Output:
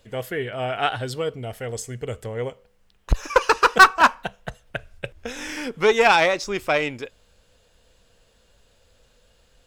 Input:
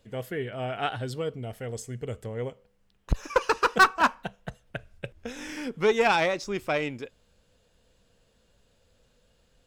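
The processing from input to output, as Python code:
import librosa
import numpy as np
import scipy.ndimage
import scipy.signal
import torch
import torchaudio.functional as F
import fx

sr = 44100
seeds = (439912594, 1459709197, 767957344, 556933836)

y = fx.peak_eq(x, sr, hz=190.0, db=-6.5, octaves=2.1)
y = F.gain(torch.from_numpy(y), 7.5).numpy()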